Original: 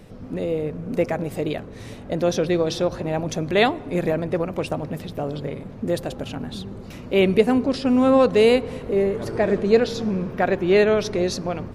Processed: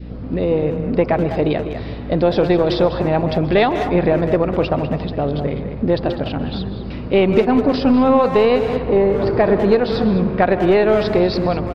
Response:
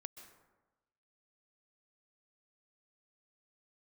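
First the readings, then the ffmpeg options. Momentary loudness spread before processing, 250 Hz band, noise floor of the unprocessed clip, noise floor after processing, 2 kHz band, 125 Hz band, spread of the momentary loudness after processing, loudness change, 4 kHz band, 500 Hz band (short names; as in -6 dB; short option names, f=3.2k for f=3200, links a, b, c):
14 LU, +5.5 dB, -38 dBFS, -28 dBFS, +2.5 dB, +7.0 dB, 9 LU, +4.5 dB, +2.0 dB, +4.5 dB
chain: -filter_complex "[0:a]equalizer=f=120:w=0.32:g=5.5,aeval=exprs='0.841*(cos(1*acos(clip(val(0)/0.841,-1,1)))-cos(1*PI/2))+0.0335*(cos(6*acos(clip(val(0)/0.841,-1,1)))-cos(6*PI/2))':c=same,aresample=11025,aresample=44100,aeval=exprs='val(0)+0.0224*(sin(2*PI*60*n/s)+sin(2*PI*2*60*n/s)/2+sin(2*PI*3*60*n/s)/3+sin(2*PI*4*60*n/s)/4+sin(2*PI*5*60*n/s)/5)':c=same,asplit=2[a][b];[1:a]atrim=start_sample=2205,lowshelf=f=170:g=-9.5[c];[b][c]afir=irnorm=-1:irlink=0,volume=3dB[d];[a][d]amix=inputs=2:normalize=0,adynamicequalizer=threshold=0.0794:dfrequency=920:dqfactor=1.1:tfrequency=920:tqfactor=1.1:attack=5:release=100:ratio=0.375:range=3.5:mode=boostabove:tftype=bell,acompressor=threshold=-10dB:ratio=12,asplit=2[e][f];[f]adelay=200,highpass=300,lowpass=3.4k,asoftclip=type=hard:threshold=-12.5dB,volume=-8dB[g];[e][g]amix=inputs=2:normalize=0"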